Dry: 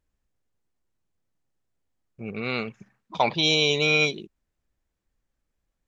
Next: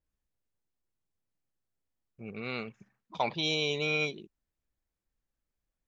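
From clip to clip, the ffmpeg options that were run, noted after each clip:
ffmpeg -i in.wav -af "adynamicequalizer=threshold=0.02:dfrequency=3300:dqfactor=0.7:tfrequency=3300:tqfactor=0.7:attack=5:release=100:ratio=0.375:range=3:mode=cutabove:tftype=highshelf,volume=-8dB" out.wav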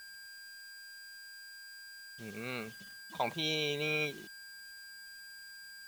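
ffmpeg -i in.wav -af "aeval=exprs='val(0)+0.00447*sin(2*PI*1600*n/s)':channel_layout=same,acrusher=bits=7:mix=0:aa=0.000001,volume=-3.5dB" out.wav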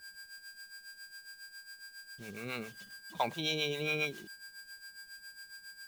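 ffmpeg -i in.wav -filter_complex "[0:a]acrossover=split=500[link_01][link_02];[link_01]aeval=exprs='val(0)*(1-0.7/2+0.7/2*cos(2*PI*7.3*n/s))':channel_layout=same[link_03];[link_02]aeval=exprs='val(0)*(1-0.7/2-0.7/2*cos(2*PI*7.3*n/s))':channel_layout=same[link_04];[link_03][link_04]amix=inputs=2:normalize=0,volume=3dB" out.wav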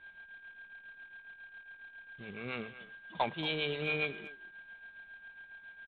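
ffmpeg -i in.wav -filter_complex "[0:a]aresample=8000,acrusher=bits=3:mode=log:mix=0:aa=0.000001,aresample=44100,asplit=2[link_01][link_02];[link_02]adelay=230,highpass=300,lowpass=3400,asoftclip=type=hard:threshold=-24dB,volume=-15dB[link_03];[link_01][link_03]amix=inputs=2:normalize=0" out.wav

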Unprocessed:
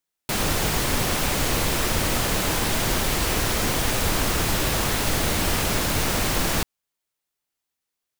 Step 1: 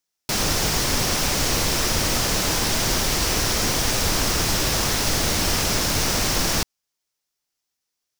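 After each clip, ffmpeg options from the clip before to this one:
ffmpeg -i in.wav -af "equalizer=frequency=5500:width=1.9:gain=8.5" out.wav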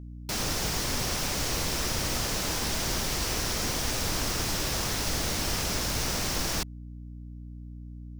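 ffmpeg -i in.wav -af "aeval=exprs='val(0)+0.0251*(sin(2*PI*60*n/s)+sin(2*PI*2*60*n/s)/2+sin(2*PI*3*60*n/s)/3+sin(2*PI*4*60*n/s)/4+sin(2*PI*5*60*n/s)/5)':channel_layout=same,volume=-8dB" out.wav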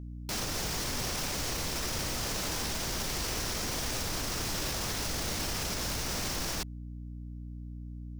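ffmpeg -i in.wav -af "alimiter=level_in=0.5dB:limit=-24dB:level=0:latency=1:release=14,volume=-0.5dB" out.wav

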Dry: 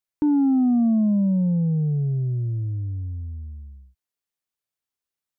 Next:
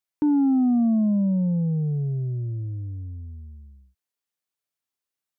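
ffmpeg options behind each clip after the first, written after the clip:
ffmpeg -i in.wav -af "lowshelf=frequency=77:gain=-11" out.wav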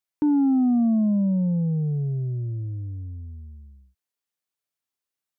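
ffmpeg -i in.wav -af anull out.wav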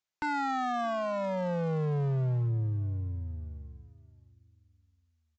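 ffmpeg -i in.wav -af "aresample=16000,aeval=exprs='0.0562*(abs(mod(val(0)/0.0562+3,4)-2)-1)':channel_layout=same,aresample=44100,aecho=1:1:616|1232|1848:0.1|0.04|0.016" out.wav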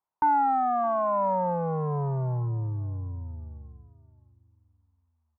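ffmpeg -i in.wav -af "lowpass=frequency=960:width_type=q:width=4.9" out.wav

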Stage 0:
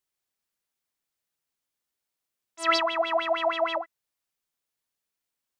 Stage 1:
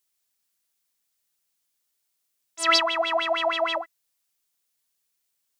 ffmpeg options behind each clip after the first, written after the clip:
ffmpeg -i in.wav -af "highshelf=frequency=2900:gain=10.5" out.wav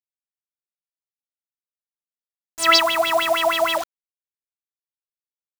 ffmpeg -i in.wav -af "acrusher=bits=5:mix=0:aa=0.000001,volume=5dB" out.wav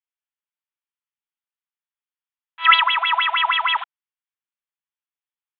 ffmpeg -i in.wav -af "asuperpass=centerf=1700:order=20:qfactor=0.63,volume=3.5dB" out.wav

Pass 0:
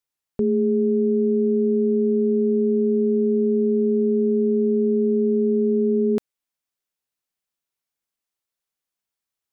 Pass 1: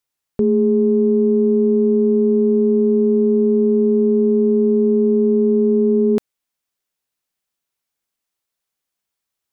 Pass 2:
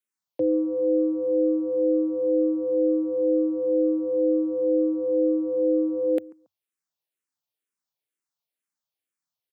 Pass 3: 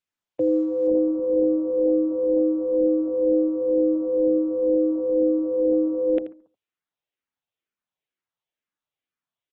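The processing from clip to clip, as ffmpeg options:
ffmpeg -i in.wav -af "acontrast=23" out.wav
ffmpeg -i in.wav -filter_complex "[0:a]afreqshift=95,asplit=2[link_01][link_02];[link_02]adelay=139,lowpass=frequency=1100:poles=1,volume=-21.5dB,asplit=2[link_03][link_04];[link_04]adelay=139,lowpass=frequency=1100:poles=1,volume=0.34[link_05];[link_01][link_03][link_05]amix=inputs=3:normalize=0,asplit=2[link_06][link_07];[link_07]afreqshift=-2.1[link_08];[link_06][link_08]amix=inputs=2:normalize=1,volume=-5.5dB" out.wav
ffmpeg -i in.wav -af "aecho=1:1:82:0.224,aresample=8000,aresample=44100,volume=1.5dB" -ar 48000 -c:a libopus -b:a 16k out.opus

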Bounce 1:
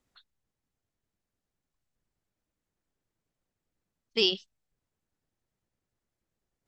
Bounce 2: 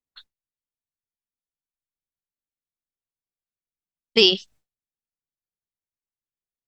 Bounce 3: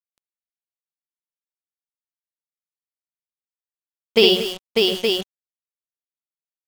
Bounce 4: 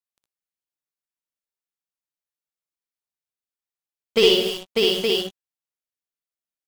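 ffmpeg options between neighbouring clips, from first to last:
ffmpeg -i in.wav -filter_complex "[0:a]agate=range=-33dB:threshold=-56dB:ratio=3:detection=peak,asplit=2[link_01][link_02];[link_02]acompressor=threshold=-31dB:ratio=6,volume=2dB[link_03];[link_01][link_03]amix=inputs=2:normalize=0,volume=6.5dB" out.wav
ffmpeg -i in.wav -af "equalizer=frequency=100:width_type=o:width=0.67:gain=11,equalizer=frequency=630:width_type=o:width=0.67:gain=11,equalizer=frequency=6300:width_type=o:width=0.67:gain=-9,aecho=1:1:63|192|232|597|708|869:0.562|0.133|0.211|0.668|0.15|0.501,acrusher=bits=4:mix=0:aa=0.5" out.wav
ffmpeg -i in.wav -af "asoftclip=type=tanh:threshold=-6dB,aecho=1:1:61|77:0.668|0.251,volume=-2dB" out.wav

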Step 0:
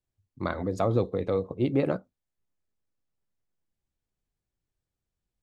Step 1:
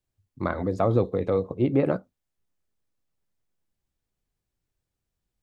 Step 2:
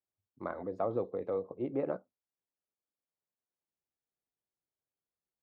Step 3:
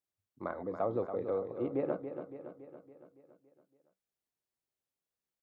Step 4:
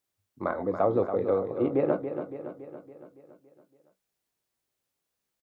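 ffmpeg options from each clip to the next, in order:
ffmpeg -i in.wav -filter_complex "[0:a]acrossover=split=2500[link_01][link_02];[link_02]acompressor=threshold=-54dB:ratio=4:attack=1:release=60[link_03];[link_01][link_03]amix=inputs=2:normalize=0,volume=3dB" out.wav
ffmpeg -i in.wav -af "bandpass=frequency=670:width_type=q:width=0.71:csg=0,volume=-8.5dB" out.wav
ffmpeg -i in.wav -af "aecho=1:1:281|562|843|1124|1405|1686|1967:0.355|0.199|0.111|0.0623|0.0349|0.0195|0.0109" out.wav
ffmpeg -i in.wav -filter_complex "[0:a]asplit=2[link_01][link_02];[link_02]adelay=20,volume=-11dB[link_03];[link_01][link_03]amix=inputs=2:normalize=0,volume=8.5dB" out.wav

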